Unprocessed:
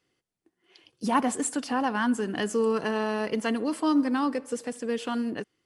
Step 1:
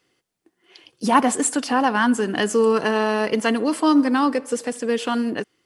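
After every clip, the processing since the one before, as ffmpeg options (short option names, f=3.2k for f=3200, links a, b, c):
-af "lowshelf=f=180:g=-6.5,volume=8.5dB"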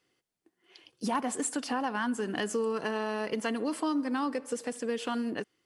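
-af "acompressor=threshold=-21dB:ratio=3,asoftclip=type=hard:threshold=-11.5dB,volume=-7.5dB"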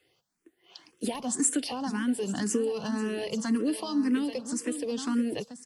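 -filter_complex "[0:a]acrossover=split=370|3000[a][b][c];[b]acompressor=threshold=-46dB:ratio=4[d];[a][d][c]amix=inputs=3:normalize=0,asplit=2[e][f];[f]aecho=0:1:835:0.282[g];[e][g]amix=inputs=2:normalize=0,asplit=2[h][i];[i]afreqshift=1.9[j];[h][j]amix=inputs=2:normalize=1,volume=8.5dB"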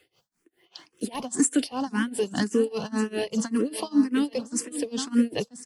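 -af "tremolo=f=5:d=0.95,volume=7.5dB"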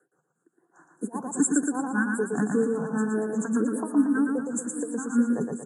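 -af "asuperstop=centerf=3400:order=20:qfactor=0.67,highpass=f=150:w=0.5412,highpass=f=150:w=1.3066,equalizer=f=160:t=q:w=4:g=8,equalizer=f=600:t=q:w=4:g=-6,equalizer=f=1.5k:t=q:w=4:g=7,equalizer=f=2.5k:t=q:w=4:g=8,equalizer=f=4.6k:t=q:w=4:g=7,lowpass=f=9.2k:w=0.5412,lowpass=f=9.2k:w=1.3066,aecho=1:1:116|232|348|464|580|696:0.631|0.29|0.134|0.0614|0.0283|0.013,volume=-1.5dB"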